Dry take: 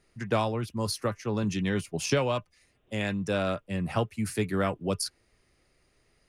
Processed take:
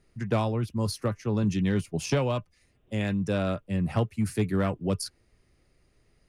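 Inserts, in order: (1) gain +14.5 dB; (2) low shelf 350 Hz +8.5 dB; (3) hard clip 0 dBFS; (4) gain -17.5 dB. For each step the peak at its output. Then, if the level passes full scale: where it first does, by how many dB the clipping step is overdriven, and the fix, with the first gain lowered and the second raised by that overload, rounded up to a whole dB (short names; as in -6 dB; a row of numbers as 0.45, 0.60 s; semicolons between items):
+1.5, +5.5, 0.0, -17.5 dBFS; step 1, 5.5 dB; step 1 +8.5 dB, step 4 -11.5 dB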